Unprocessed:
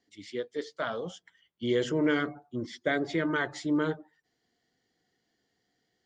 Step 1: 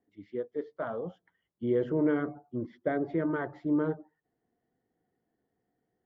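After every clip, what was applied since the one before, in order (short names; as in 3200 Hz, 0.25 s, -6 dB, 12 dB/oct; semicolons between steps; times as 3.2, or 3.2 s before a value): LPF 1000 Hz 12 dB/oct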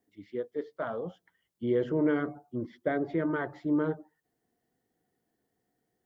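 high shelf 2800 Hz +9 dB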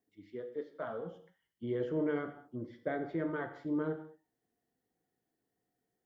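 non-linear reverb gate 0.25 s falling, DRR 6.5 dB; gain -6.5 dB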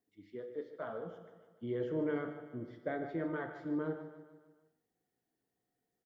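feedback echo 0.15 s, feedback 52%, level -12 dB; gain -2 dB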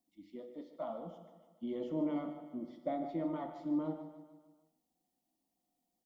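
fixed phaser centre 430 Hz, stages 6; gain +3.5 dB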